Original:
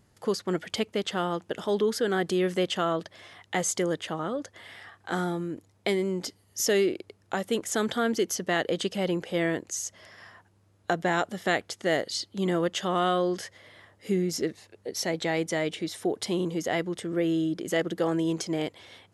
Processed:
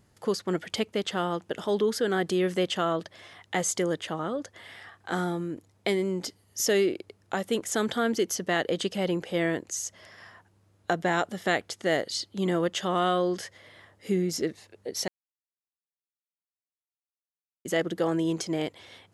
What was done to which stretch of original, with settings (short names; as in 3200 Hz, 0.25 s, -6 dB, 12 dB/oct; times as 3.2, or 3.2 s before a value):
15.08–17.65 mute